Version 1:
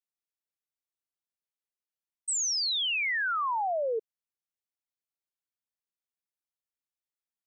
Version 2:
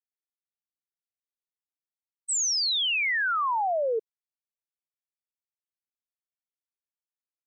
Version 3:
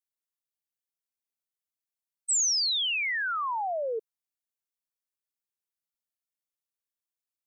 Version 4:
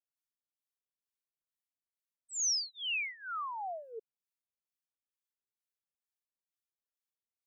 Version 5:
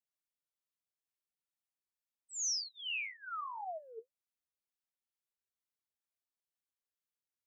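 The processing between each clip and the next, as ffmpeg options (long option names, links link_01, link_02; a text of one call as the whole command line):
ffmpeg -i in.wav -af "agate=range=-33dB:threshold=-26dB:ratio=3:detection=peak,volume=6.5dB" out.wav
ffmpeg -i in.wav -af "highshelf=frequency=5000:gain=8.5,volume=-4.5dB" out.wav
ffmpeg -i in.wav -filter_complex "[0:a]acrossover=split=920[link_01][link_02];[link_01]aeval=exprs='val(0)*(1-1/2+1/2*cos(2*PI*2.2*n/s))':channel_layout=same[link_03];[link_02]aeval=exprs='val(0)*(1-1/2-1/2*cos(2*PI*2.2*n/s))':channel_layout=same[link_04];[link_03][link_04]amix=inputs=2:normalize=0,volume=-4dB" out.wav
ffmpeg -i in.wav -af "flanger=delay=8.1:depth=5.8:regen=44:speed=1.9:shape=sinusoidal" out.wav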